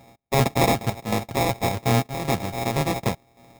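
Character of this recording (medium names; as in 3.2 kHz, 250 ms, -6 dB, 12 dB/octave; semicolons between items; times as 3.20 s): a buzz of ramps at a fixed pitch in blocks of 64 samples; chopped level 0.89 Hz, depth 60%, duty 80%; aliases and images of a low sample rate 1.5 kHz, jitter 0%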